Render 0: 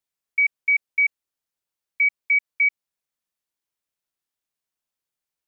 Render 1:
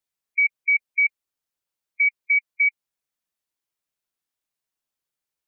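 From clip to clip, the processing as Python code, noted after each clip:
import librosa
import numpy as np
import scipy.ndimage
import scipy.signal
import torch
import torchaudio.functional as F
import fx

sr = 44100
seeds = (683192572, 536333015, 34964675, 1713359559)

y = fx.spec_gate(x, sr, threshold_db=-15, keep='strong')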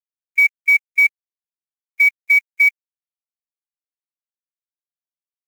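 y = fx.quant_companded(x, sr, bits=6)
y = y * librosa.db_to_amplitude(6.0)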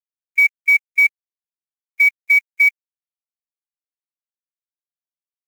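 y = x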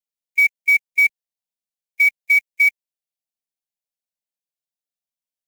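y = fx.fixed_phaser(x, sr, hz=340.0, stages=6)
y = y * librosa.db_to_amplitude(2.5)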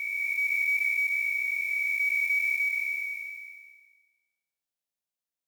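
y = fx.spec_blur(x, sr, span_ms=1160.0)
y = y * librosa.db_to_amplitude(2.0)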